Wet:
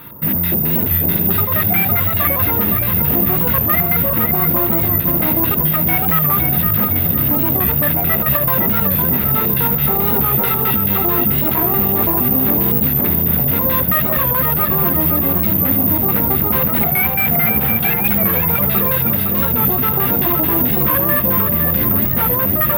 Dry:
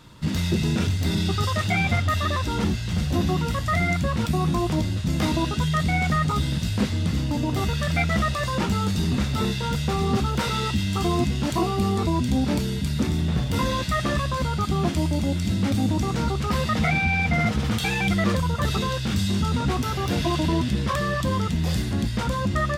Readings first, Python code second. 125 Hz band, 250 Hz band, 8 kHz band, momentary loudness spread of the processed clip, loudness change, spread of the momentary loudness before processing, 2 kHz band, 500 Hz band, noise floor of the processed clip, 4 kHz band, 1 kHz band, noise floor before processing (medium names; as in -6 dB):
+2.0 dB, +3.5 dB, +0.5 dB, 1 LU, +11.0 dB, 3 LU, +4.0 dB, +6.0 dB, -18 dBFS, -2.5 dB, +5.0 dB, -28 dBFS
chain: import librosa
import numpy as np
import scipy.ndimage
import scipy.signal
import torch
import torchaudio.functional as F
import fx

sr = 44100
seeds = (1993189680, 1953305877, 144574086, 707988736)

p1 = fx.highpass(x, sr, hz=160.0, slope=6)
p2 = fx.over_compress(p1, sr, threshold_db=-30.0, ratio=-1.0)
p3 = p1 + (p2 * 10.0 ** (-2.0 / 20.0))
p4 = np.clip(p3, -10.0 ** (-21.5 / 20.0), 10.0 ** (-21.5 / 20.0))
p5 = fx.filter_lfo_lowpass(p4, sr, shape='square', hz=4.6, low_hz=770.0, high_hz=2200.0, q=1.2)
p6 = p5 + fx.echo_feedback(p5, sr, ms=510, feedback_pct=42, wet_db=-6.0, dry=0)
p7 = (np.kron(p6[::3], np.eye(3)[0]) * 3)[:len(p6)]
p8 = fx.record_warp(p7, sr, rpm=45.0, depth_cents=100.0)
y = p8 * 10.0 ** (3.5 / 20.0)